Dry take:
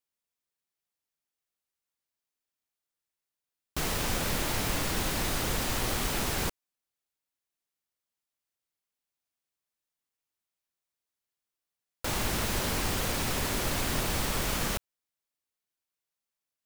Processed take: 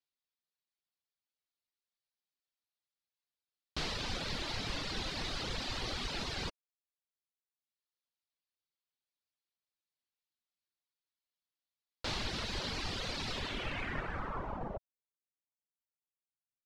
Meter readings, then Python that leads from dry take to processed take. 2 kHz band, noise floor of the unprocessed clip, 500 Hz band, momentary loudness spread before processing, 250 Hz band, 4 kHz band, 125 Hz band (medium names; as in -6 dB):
-6.5 dB, under -85 dBFS, -8.5 dB, 4 LU, -9.0 dB, -4.0 dB, -9.0 dB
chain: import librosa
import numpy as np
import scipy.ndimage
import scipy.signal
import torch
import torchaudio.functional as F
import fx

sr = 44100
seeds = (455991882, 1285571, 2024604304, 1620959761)

y = fx.dereverb_blind(x, sr, rt60_s=1.2)
y = fx.filter_sweep_lowpass(y, sr, from_hz=4300.0, to_hz=130.0, start_s=13.31, end_s=16.07, q=2.4)
y = y * 10.0 ** (-6.0 / 20.0)